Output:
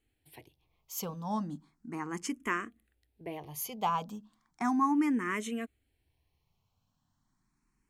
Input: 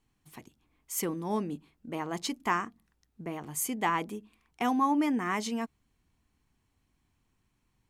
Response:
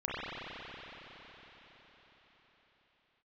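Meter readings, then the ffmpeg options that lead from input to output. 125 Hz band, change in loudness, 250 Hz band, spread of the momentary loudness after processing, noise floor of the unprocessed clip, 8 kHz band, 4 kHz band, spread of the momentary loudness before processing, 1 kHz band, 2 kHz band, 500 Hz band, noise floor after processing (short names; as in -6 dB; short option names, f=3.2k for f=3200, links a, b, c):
-2.0 dB, -2.0 dB, -1.0 dB, 17 LU, -75 dBFS, -6.5 dB, -5.5 dB, 14 LU, -2.5 dB, -2.0 dB, -5.0 dB, -79 dBFS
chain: -filter_complex "[0:a]asplit=2[a][b];[b]afreqshift=0.35[c];[a][c]amix=inputs=2:normalize=1"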